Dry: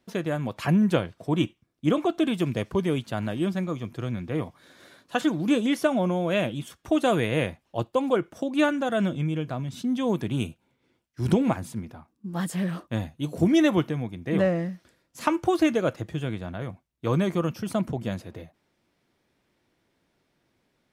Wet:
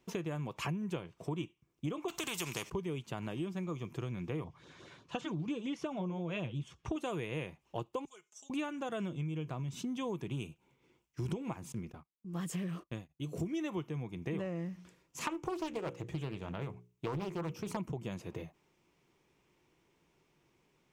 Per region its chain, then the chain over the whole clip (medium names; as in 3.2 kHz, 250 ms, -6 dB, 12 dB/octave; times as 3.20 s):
2.08–2.70 s: treble shelf 2.5 kHz +9 dB + spectrum-flattening compressor 2:1
4.44–6.96 s: low-pass 5.3 kHz + peaking EQ 100 Hz +9 dB 1.2 oct + LFO notch sine 5.7 Hz 260–2300 Hz
8.05–8.50 s: band-pass filter 6.9 kHz, Q 3.1 + comb 4.7 ms, depth 95%
11.72–13.60 s: gate -47 dBFS, range -20 dB + peaking EQ 890 Hz -8.5 dB 0.31 oct + tremolo of two beating tones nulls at 1.1 Hz
14.72–17.77 s: hum notches 60/120/180/240/300/360/420/480/540 Hz + loudspeaker Doppler distortion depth 0.72 ms
whole clip: rippled EQ curve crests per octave 0.73, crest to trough 7 dB; compression 6:1, threshold -34 dBFS; trim -1.5 dB